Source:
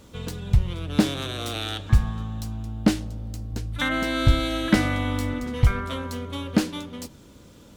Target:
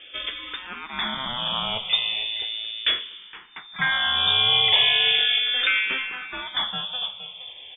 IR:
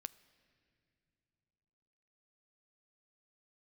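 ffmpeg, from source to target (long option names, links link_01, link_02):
-filter_complex "[0:a]highpass=150,lowshelf=frequency=190:gain=-11.5,volume=25.5dB,asoftclip=hard,volume=-25.5dB,aecho=1:1:467:0.188,asplit=2[link_01][link_02];[1:a]atrim=start_sample=2205[link_03];[link_02][link_03]afir=irnorm=-1:irlink=0,volume=8.5dB[link_04];[link_01][link_04]amix=inputs=2:normalize=0,lowpass=frequency=3100:width_type=q:width=0.5098,lowpass=frequency=3100:width_type=q:width=0.6013,lowpass=frequency=3100:width_type=q:width=0.9,lowpass=frequency=3100:width_type=q:width=2.563,afreqshift=-3700,asplit=2[link_05][link_06];[link_06]afreqshift=-0.37[link_07];[link_05][link_07]amix=inputs=2:normalize=1,volume=4dB"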